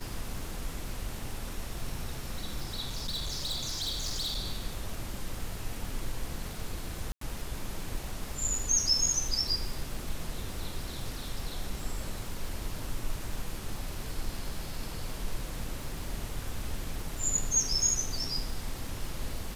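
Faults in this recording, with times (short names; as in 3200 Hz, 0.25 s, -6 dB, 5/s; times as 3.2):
crackle 160/s -38 dBFS
2.84–4.37 clipped -29.5 dBFS
7.12–7.21 gap 93 ms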